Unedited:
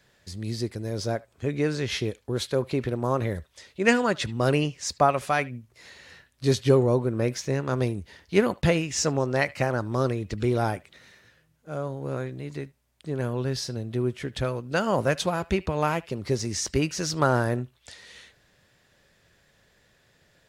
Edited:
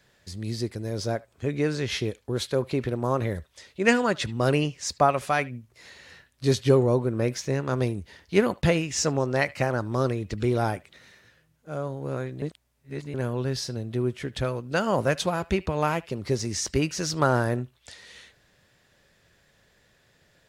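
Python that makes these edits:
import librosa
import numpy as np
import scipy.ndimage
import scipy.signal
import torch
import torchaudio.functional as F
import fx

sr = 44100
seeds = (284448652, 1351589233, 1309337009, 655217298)

y = fx.edit(x, sr, fx.reverse_span(start_s=12.42, length_s=0.72), tone=tone)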